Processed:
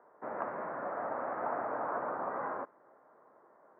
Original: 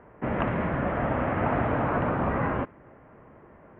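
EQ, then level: HPF 570 Hz 12 dB/oct; LPF 1500 Hz 24 dB/oct; air absorption 230 m; -4.5 dB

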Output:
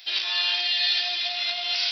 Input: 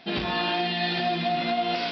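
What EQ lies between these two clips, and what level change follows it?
HPF 400 Hz 12 dB/oct; differentiator; high shelf 2200 Hz +12 dB; +5.5 dB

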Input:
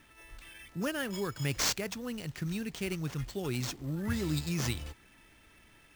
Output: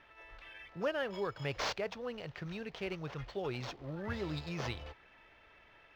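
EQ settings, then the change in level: dynamic EQ 1800 Hz, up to -4 dB, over -48 dBFS, Q 0.89; air absorption 270 m; resonant low shelf 380 Hz -9.5 dB, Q 1.5; +3.0 dB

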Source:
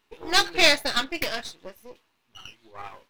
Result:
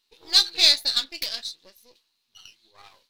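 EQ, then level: bell 4200 Hz +15 dB 0.71 oct; high shelf 5800 Hz +10.5 dB; bell 8500 Hz +5.5 dB 2.5 oct; -14.0 dB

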